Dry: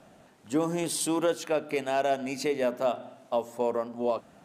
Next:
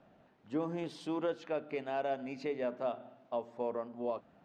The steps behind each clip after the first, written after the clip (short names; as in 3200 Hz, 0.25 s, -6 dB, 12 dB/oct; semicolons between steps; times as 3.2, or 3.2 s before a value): air absorption 230 m; gain -7.5 dB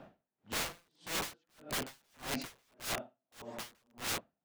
wrapped overs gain 40 dB; dB-linear tremolo 1.7 Hz, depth 40 dB; gain +11 dB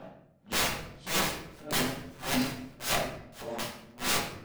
shoebox room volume 180 m³, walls mixed, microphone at 1.1 m; gain +5 dB